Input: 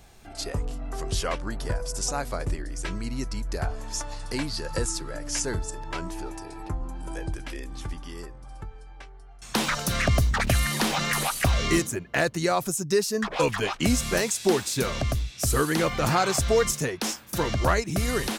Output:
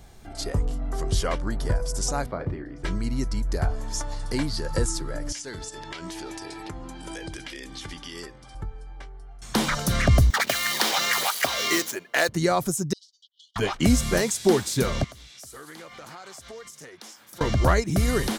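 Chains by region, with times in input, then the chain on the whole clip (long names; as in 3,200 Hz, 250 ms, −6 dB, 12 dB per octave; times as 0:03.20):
0:02.26–0:02.84: high-pass filter 100 Hz + high-frequency loss of the air 390 metres + double-tracking delay 35 ms −10 dB
0:05.32–0:08.55: meter weighting curve D + downward compressor 8 to 1, threshold −33 dBFS
0:10.30–0:12.29: running median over 5 samples + high-pass filter 470 Hz + high-shelf EQ 2,900 Hz +11 dB
0:12.93–0:13.56: noise gate −29 dBFS, range −20 dB + linear-phase brick-wall high-pass 2,900 Hz + head-to-tape spacing loss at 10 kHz 35 dB
0:15.04–0:17.41: high-pass filter 810 Hz 6 dB per octave + downward compressor 4 to 1, threshold −43 dBFS + highs frequency-modulated by the lows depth 0.2 ms
whole clip: low-shelf EQ 420 Hz +5 dB; notch filter 2,600 Hz, Q 11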